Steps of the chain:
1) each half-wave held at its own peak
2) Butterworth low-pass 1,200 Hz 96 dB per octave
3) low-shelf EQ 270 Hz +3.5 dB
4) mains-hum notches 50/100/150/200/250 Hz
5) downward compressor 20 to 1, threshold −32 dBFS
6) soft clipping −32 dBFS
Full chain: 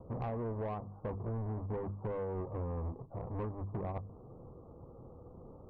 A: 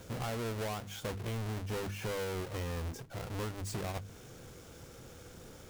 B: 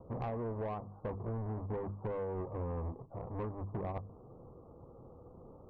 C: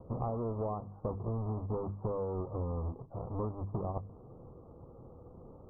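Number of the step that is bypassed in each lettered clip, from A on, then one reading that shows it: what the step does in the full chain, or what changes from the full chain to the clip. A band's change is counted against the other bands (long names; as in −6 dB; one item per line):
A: 2, 2 kHz band +13.5 dB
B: 3, 125 Hz band −1.5 dB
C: 6, distortion level −16 dB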